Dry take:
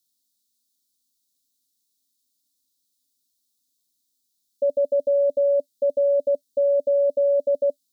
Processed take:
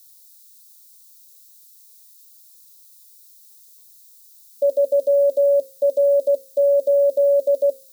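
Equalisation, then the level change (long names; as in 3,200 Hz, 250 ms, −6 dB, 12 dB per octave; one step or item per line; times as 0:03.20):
high-pass filter 220 Hz 6 dB per octave
spectral tilt +4.5 dB per octave
mains-hum notches 60/120/180/240/300/360/420/480/540 Hz
+8.0 dB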